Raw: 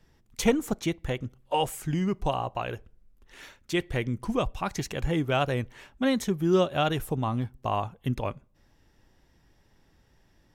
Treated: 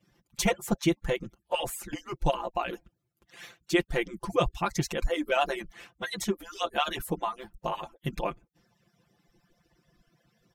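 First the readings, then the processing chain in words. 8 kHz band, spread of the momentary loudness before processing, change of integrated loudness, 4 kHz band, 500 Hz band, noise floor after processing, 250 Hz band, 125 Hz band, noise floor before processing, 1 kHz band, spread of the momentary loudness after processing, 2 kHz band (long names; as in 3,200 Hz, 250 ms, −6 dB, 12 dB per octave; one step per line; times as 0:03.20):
+1.5 dB, 10 LU, −2.0 dB, +0.5 dB, −2.0 dB, −79 dBFS, −4.0 dB, −6.5 dB, −64 dBFS, −1.0 dB, 11 LU, +1.5 dB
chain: harmonic-percussive split with one part muted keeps percussive
comb filter 5.8 ms, depth 79%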